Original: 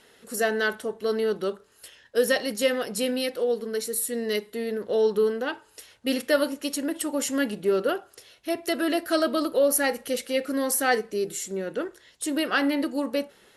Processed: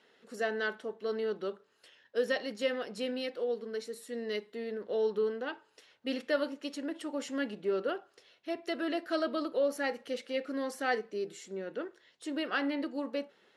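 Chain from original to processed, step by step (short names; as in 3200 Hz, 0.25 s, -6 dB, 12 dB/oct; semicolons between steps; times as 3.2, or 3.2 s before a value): BPF 180–4400 Hz; gain -8 dB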